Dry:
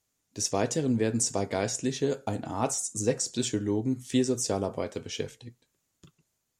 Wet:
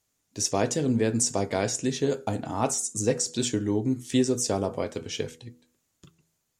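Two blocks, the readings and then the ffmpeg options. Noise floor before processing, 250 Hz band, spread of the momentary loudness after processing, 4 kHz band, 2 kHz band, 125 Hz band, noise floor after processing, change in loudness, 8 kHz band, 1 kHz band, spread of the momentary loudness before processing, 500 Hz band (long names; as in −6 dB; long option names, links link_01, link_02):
−79 dBFS, +2.0 dB, 9 LU, +2.5 dB, +2.5 dB, +2.5 dB, −76 dBFS, +2.5 dB, +2.5 dB, +2.5 dB, 8 LU, +2.0 dB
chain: -af "bandreject=frequency=81.36:width_type=h:width=4,bandreject=frequency=162.72:width_type=h:width=4,bandreject=frequency=244.08:width_type=h:width=4,bandreject=frequency=325.44:width_type=h:width=4,bandreject=frequency=406.8:width_type=h:width=4,bandreject=frequency=488.16:width_type=h:width=4,volume=2.5dB"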